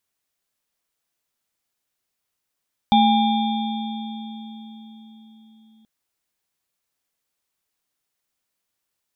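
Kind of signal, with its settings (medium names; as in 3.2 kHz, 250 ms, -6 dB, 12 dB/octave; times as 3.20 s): sine partials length 2.93 s, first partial 220 Hz, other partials 812/2360/3290/3570 Hz, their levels 2/-18/-15/-8.5 dB, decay 4.83 s, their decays 2.91/2.99/4.54/3.67 s, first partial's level -15 dB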